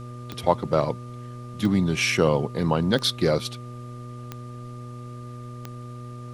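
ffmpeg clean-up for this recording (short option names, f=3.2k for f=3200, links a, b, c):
-af "adeclick=t=4,bandreject=f=121.7:t=h:w=4,bandreject=f=243.4:t=h:w=4,bandreject=f=365.1:t=h:w=4,bandreject=f=486.8:t=h:w=4,bandreject=f=608.5:t=h:w=4,bandreject=f=1.2k:w=30,agate=range=-21dB:threshold=-30dB"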